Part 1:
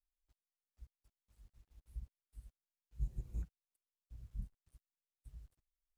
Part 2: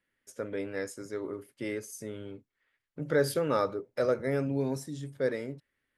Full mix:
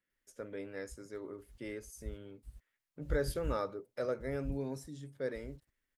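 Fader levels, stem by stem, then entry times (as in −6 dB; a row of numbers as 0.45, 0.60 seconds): +2.5, −8.0 decibels; 0.10, 0.00 seconds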